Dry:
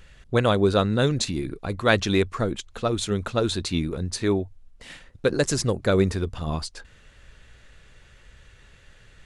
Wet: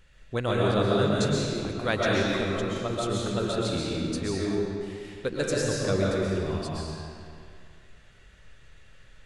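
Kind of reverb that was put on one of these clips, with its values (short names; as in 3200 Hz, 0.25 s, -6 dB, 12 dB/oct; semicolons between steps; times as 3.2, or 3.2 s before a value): digital reverb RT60 2.2 s, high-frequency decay 0.8×, pre-delay 90 ms, DRR -4.5 dB; gain -8.5 dB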